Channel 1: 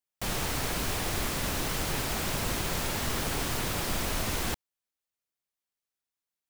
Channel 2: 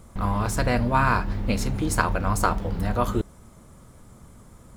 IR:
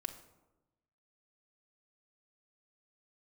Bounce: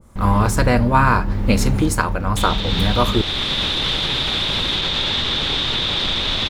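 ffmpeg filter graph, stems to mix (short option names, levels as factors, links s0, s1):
-filter_complex "[0:a]lowpass=f=3600:t=q:w=11,alimiter=limit=0.119:level=0:latency=1:release=25,adelay=2150,volume=0.562[s0];[1:a]adynamicequalizer=threshold=0.02:dfrequency=1600:dqfactor=0.7:tfrequency=1600:tqfactor=0.7:attack=5:release=100:ratio=0.375:range=2.5:mode=cutabove:tftype=highshelf,volume=0.841[s1];[s0][s1]amix=inputs=2:normalize=0,dynaudnorm=f=140:g=3:m=3.98,bandreject=f=690:w=12"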